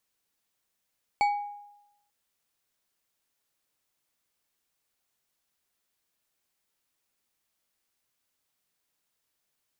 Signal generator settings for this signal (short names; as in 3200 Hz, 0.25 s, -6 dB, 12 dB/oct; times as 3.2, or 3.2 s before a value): glass hit bar, lowest mode 821 Hz, decay 0.91 s, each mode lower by 8.5 dB, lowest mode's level -19 dB